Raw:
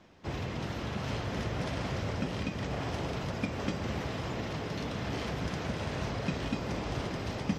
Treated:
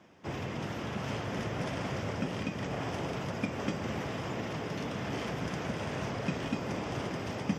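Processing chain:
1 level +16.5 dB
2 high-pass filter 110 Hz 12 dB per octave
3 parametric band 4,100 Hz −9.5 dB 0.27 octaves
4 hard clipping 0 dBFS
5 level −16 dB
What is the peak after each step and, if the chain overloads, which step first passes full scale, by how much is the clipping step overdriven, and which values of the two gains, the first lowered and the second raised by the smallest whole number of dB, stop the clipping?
−2.5, −1.5, −1.5, −1.5, −17.5 dBFS
no step passes full scale

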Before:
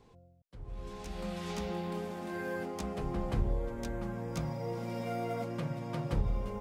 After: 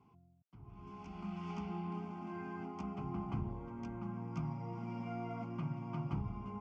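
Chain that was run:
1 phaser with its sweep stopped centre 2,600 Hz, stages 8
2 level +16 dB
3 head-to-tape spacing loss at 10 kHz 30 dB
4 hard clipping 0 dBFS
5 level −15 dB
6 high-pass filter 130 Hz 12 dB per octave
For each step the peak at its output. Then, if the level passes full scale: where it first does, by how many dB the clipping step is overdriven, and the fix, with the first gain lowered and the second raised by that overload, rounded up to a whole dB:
−19.5, −3.5, −3.5, −3.5, −18.5, −25.5 dBFS
no step passes full scale

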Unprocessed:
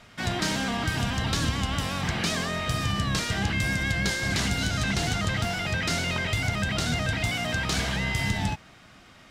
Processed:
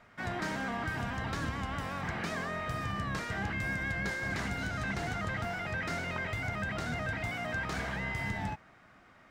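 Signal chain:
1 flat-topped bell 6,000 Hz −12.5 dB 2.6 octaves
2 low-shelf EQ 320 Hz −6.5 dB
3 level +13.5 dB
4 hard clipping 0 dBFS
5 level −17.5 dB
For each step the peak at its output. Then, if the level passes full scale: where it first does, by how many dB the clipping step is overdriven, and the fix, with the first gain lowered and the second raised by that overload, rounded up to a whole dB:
−15.0, −18.5, −5.0, −5.0, −22.5 dBFS
no step passes full scale

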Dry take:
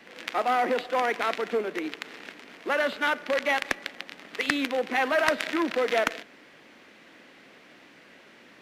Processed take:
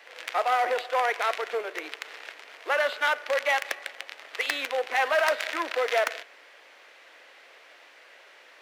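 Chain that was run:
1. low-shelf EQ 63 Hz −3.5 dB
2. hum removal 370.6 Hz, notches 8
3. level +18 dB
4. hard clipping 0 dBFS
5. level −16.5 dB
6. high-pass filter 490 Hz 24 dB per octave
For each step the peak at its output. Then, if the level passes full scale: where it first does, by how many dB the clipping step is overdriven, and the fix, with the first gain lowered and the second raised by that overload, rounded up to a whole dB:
−10.5, −10.5, +7.5, 0.0, −16.5, −10.0 dBFS
step 3, 7.5 dB
step 3 +10 dB, step 5 −8.5 dB

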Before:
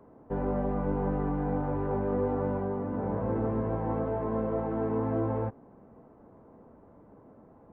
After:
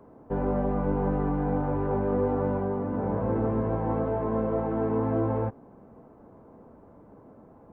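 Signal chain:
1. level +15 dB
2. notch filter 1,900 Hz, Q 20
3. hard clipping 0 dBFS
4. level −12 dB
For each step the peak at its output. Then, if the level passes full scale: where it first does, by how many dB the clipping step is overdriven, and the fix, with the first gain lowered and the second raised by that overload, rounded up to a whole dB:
−3.0, −3.0, −3.0, −15.0 dBFS
no step passes full scale

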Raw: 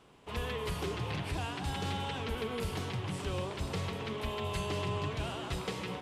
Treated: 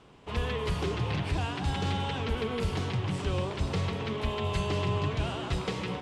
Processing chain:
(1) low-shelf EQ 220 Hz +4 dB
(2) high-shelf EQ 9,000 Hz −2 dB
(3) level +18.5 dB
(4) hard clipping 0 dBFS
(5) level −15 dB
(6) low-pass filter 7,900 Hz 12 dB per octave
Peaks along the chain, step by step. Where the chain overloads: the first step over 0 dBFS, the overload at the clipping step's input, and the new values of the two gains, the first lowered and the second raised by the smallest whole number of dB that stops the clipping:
−21.5, −21.5, −3.0, −3.0, −18.0, −18.0 dBFS
no step passes full scale

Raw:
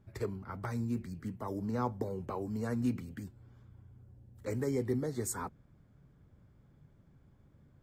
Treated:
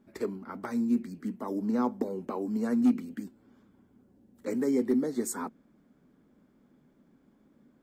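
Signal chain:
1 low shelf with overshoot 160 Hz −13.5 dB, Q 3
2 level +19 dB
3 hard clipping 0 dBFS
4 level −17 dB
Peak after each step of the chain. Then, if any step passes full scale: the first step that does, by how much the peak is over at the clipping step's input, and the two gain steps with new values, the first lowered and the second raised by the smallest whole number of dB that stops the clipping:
−16.0, +3.0, 0.0, −17.0 dBFS
step 2, 3.0 dB
step 2 +16 dB, step 4 −14 dB

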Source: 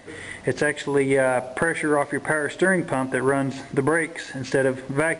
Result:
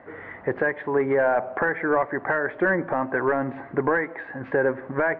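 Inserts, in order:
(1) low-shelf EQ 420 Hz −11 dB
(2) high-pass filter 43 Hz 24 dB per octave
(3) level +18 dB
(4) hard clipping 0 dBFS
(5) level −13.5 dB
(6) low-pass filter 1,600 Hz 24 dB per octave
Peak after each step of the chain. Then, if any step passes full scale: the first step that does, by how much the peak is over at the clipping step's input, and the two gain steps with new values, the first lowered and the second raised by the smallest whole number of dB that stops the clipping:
−9.0, −8.5, +9.5, 0.0, −13.5, −12.0 dBFS
step 3, 9.5 dB
step 3 +8 dB, step 5 −3.5 dB

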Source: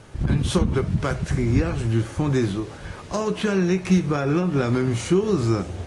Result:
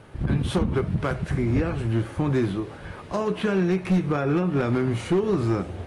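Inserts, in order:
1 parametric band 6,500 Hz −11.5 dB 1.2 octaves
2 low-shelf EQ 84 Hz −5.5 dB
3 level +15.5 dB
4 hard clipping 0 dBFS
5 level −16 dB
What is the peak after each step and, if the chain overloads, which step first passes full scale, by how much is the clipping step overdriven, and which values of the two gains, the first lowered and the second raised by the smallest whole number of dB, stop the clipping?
−7.0, −8.0, +7.5, 0.0, −16.0 dBFS
step 3, 7.5 dB
step 3 +7.5 dB, step 5 −8 dB

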